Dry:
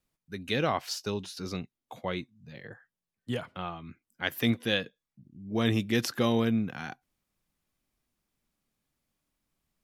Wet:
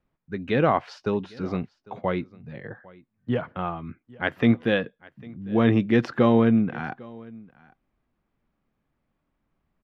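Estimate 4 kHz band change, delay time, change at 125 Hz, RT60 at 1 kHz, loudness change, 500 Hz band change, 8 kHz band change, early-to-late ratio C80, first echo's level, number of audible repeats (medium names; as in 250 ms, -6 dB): -5.0 dB, 801 ms, +6.5 dB, no reverb, +6.5 dB, +8.0 dB, under -15 dB, no reverb, -23.0 dB, 1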